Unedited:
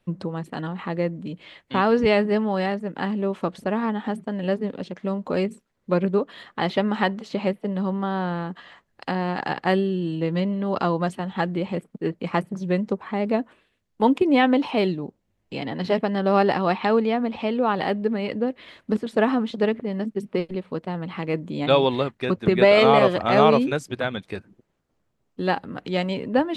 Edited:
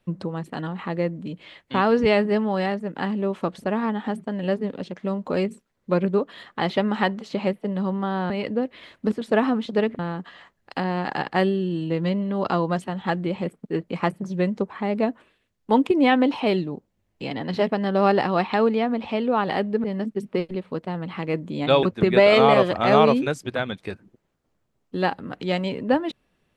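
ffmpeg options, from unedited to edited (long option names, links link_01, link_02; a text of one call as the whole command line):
ffmpeg -i in.wav -filter_complex "[0:a]asplit=5[link_01][link_02][link_03][link_04][link_05];[link_01]atrim=end=8.302[link_06];[link_02]atrim=start=18.148:end=19.842[link_07];[link_03]atrim=start=8.298:end=18.152[link_08];[link_04]atrim=start=19.838:end=21.832[link_09];[link_05]atrim=start=22.278[link_10];[link_06][link_07]acrossfade=duration=0.004:curve1=hsin:curve2=hsin[link_11];[link_11][link_08]acrossfade=duration=0.004:curve1=hsin:curve2=hsin[link_12];[link_12][link_09]acrossfade=duration=0.004:curve1=hsin:curve2=hsin[link_13];[link_13][link_10]acrossfade=duration=0.004:curve1=hsin:curve2=hsin" out.wav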